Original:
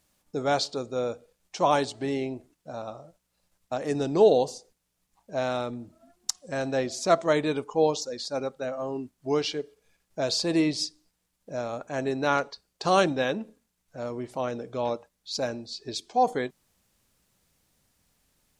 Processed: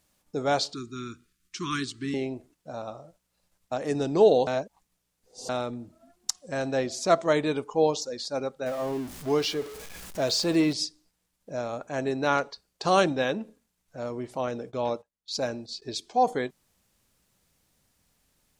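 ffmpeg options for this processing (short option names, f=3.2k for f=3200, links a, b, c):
-filter_complex "[0:a]asettb=1/sr,asplit=3[a][b][c];[a]atrim=end=0.734[d];[b]atrim=start=0.73:end=2.14,asetpts=PTS-STARTPTS,afade=t=in:d=0.004:c=qsin,afade=t=out:st=1.406:d=0.004:c=qsin,asuperstop=centerf=650:order=12:qfactor=0.86[e];[c]atrim=start=2.136[f];[d][e]acrossfade=d=0.004:c1=hsin:c2=qsin[g];[g][f]acrossfade=d=0.004:c1=qsin:c2=hsin,asettb=1/sr,asplit=3[h][i][j];[h]atrim=end=8.664[k];[i]atrim=start=8.66:end=10.73,asetpts=PTS-STARTPTS,afade=t=in:d=0.004:c=qsin,afade=t=out:st=2.066:d=0.004:c=qsin,aeval=exprs='val(0)+0.5*0.0158*sgn(val(0))':c=same[l];[j]atrim=start=10.726[m];[k][l]acrossfade=d=0.004:c1=hsin:c2=qsin[n];[n][m]acrossfade=d=0.004:c1=qsin:c2=hsin,asettb=1/sr,asplit=3[o][p][q];[o]atrim=end=14.474[r];[p]atrim=start=14.47:end=15.82,asetpts=PTS-STARTPTS,afade=t=in:d=0.004:c=qsin,afade=t=out:st=1.346:d=0.004:c=qsin,agate=range=-18dB:threshold=-47dB:ratio=16:release=100:detection=peak[s];[q]atrim=start=15.816[t];[r][s]acrossfade=d=0.004:c1=hsin:c2=qsin[u];[u][t]acrossfade=d=0.004:c1=qsin:c2=hsin,asplit=3[v][w][x];[v]atrim=end=4.472[y];[w]atrim=start=4.468:end=5.492,asetpts=PTS-STARTPTS,areverse[z];[x]atrim=start=5.488[aa];[y][z]acrossfade=d=0.004:c1=hsin:c2=hsin[ab];[ab][aa]acrossfade=d=0.004:c1=hsin:c2=hsin"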